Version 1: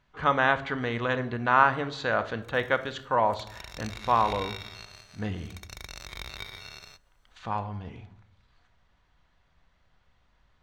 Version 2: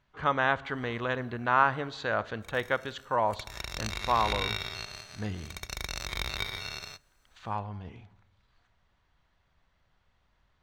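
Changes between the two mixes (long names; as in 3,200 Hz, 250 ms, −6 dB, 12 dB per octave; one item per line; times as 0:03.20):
speech: send −11.0 dB
background +6.0 dB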